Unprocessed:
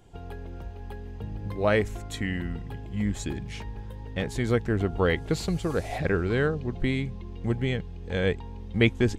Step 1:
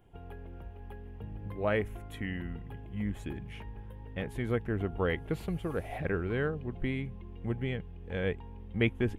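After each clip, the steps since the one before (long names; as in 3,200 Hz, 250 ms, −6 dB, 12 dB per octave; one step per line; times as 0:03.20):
flat-topped bell 5,600 Hz −14 dB 1.3 octaves
level −6.5 dB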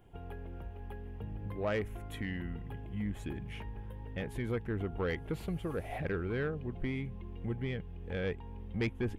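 in parallel at −2 dB: downward compressor, threshold −39 dBFS, peak gain reduction 16.5 dB
on the sum: soft clipping −21.5 dBFS, distortion −16 dB
level −3.5 dB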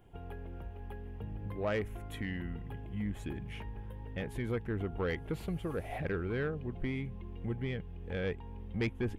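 no processing that can be heard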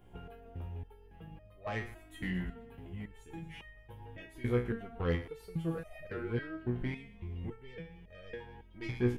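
feedback echo with a high-pass in the loop 116 ms, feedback 56%, high-pass 790 Hz, level −15 dB
step-sequenced resonator 3.6 Hz 61–620 Hz
level +9 dB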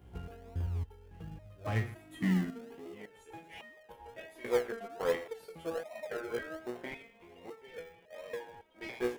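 high-pass filter sweep 64 Hz → 580 Hz, 0:01.36–0:03.21
in parallel at −9 dB: sample-and-hold swept by an LFO 38×, swing 60% 1.3 Hz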